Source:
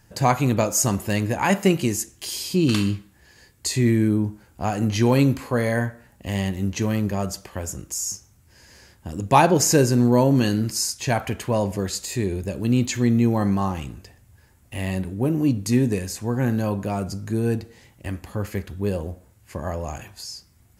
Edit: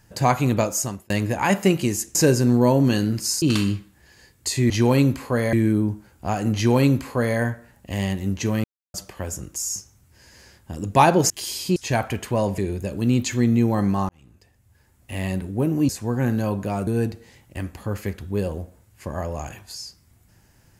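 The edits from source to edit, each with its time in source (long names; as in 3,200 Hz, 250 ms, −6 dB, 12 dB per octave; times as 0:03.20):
0:00.61–0:01.10: fade out
0:02.15–0:02.61: swap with 0:09.66–0:10.93
0:04.91–0:05.74: duplicate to 0:03.89
0:07.00–0:07.30: silence
0:11.75–0:12.21: remove
0:13.72–0:14.85: fade in
0:15.52–0:16.09: remove
0:17.07–0:17.36: remove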